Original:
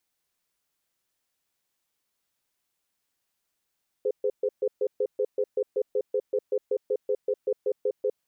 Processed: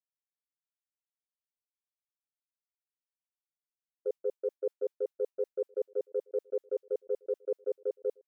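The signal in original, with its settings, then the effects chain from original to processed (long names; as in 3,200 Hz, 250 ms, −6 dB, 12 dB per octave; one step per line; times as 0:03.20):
tone pair in a cadence 417 Hz, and 510 Hz, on 0.06 s, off 0.13 s, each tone −25 dBFS 4.05 s
downward expander −24 dBFS
low-shelf EQ 280 Hz −9 dB
slap from a distant wall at 280 metres, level −27 dB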